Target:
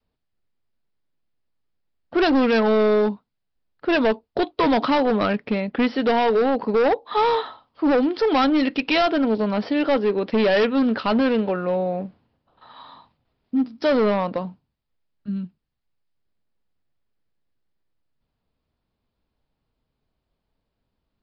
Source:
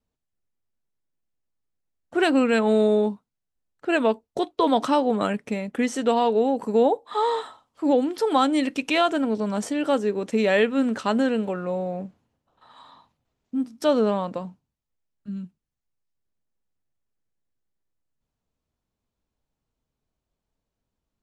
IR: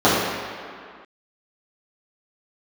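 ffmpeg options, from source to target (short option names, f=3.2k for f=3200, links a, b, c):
-af "adynamicequalizer=threshold=0.02:dfrequency=150:dqfactor=0.78:tfrequency=150:tqfactor=0.78:attack=5:release=100:ratio=0.375:range=1.5:mode=cutabove:tftype=bell,aresample=11025,asoftclip=type=hard:threshold=-20.5dB,aresample=44100,volume=5.5dB"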